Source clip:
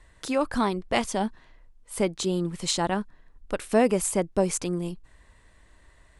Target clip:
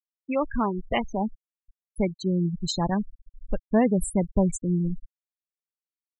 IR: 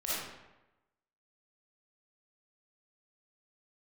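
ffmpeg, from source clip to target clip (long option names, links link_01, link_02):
-af "afftfilt=real='re*gte(hypot(re,im),0.0891)':imag='im*gte(hypot(re,im),0.0891)':win_size=1024:overlap=0.75,asubboost=boost=5.5:cutoff=170"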